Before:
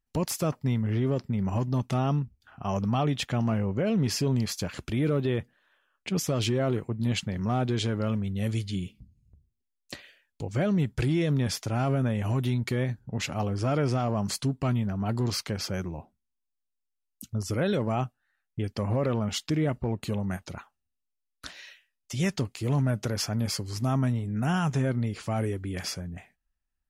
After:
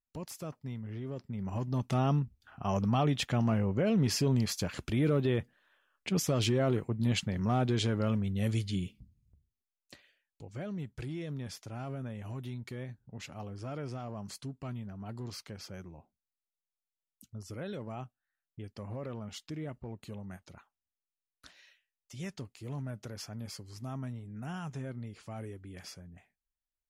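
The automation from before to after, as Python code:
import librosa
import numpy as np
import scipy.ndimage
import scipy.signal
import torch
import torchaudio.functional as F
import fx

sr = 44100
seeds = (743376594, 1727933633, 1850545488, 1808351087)

y = fx.gain(x, sr, db=fx.line((1.05, -13.5), (2.01, -2.0), (8.84, -2.0), (9.94, -13.5)))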